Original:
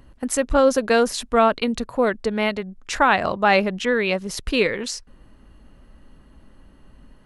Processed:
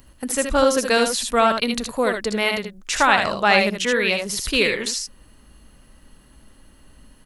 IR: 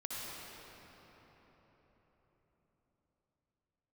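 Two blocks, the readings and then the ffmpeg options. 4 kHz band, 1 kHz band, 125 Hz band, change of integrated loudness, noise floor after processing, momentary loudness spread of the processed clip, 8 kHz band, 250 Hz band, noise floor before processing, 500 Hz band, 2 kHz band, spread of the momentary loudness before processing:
+6.0 dB, +0.5 dB, −1.5 dB, +1.0 dB, −52 dBFS, 9 LU, +5.5 dB, −1.5 dB, −52 dBFS, −1.0 dB, +3.0 dB, 9 LU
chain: -filter_complex "[0:a]aecho=1:1:63|77:0.237|0.473,crystalizer=i=4.5:c=0,acrossover=split=3600[link_01][link_02];[link_02]acompressor=threshold=-21dB:ratio=4:attack=1:release=60[link_03];[link_01][link_03]amix=inputs=2:normalize=0,volume=-2.5dB"

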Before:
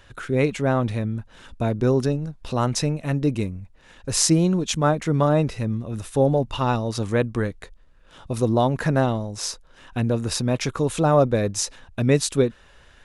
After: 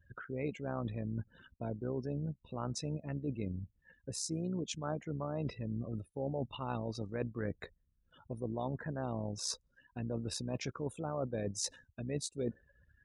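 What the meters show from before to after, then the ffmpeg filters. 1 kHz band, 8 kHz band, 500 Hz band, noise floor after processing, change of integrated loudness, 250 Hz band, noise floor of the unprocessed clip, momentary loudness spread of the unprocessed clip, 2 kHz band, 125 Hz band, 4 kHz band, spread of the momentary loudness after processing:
−18.5 dB, −15.5 dB, −17.5 dB, −76 dBFS, −17.0 dB, −16.0 dB, −52 dBFS, 10 LU, −17.5 dB, −16.5 dB, −15.0 dB, 7 LU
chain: -af "areverse,acompressor=threshold=-31dB:ratio=10,areverse,afftdn=noise_reduction=36:noise_floor=-44,highpass=85,tremolo=f=64:d=0.462,volume=-1dB"

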